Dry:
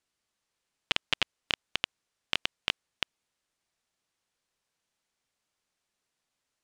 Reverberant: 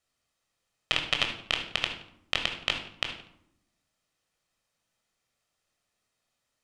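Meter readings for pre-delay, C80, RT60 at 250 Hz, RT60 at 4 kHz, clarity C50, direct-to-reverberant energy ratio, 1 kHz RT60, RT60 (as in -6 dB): 17 ms, 11.0 dB, 1.2 s, 0.45 s, 7.0 dB, 3.5 dB, 0.70 s, 0.75 s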